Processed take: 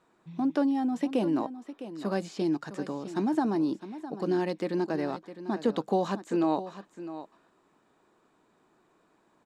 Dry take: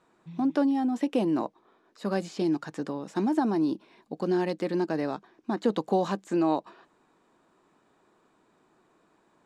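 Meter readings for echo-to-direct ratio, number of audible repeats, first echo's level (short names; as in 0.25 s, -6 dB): -13.0 dB, 1, -13.0 dB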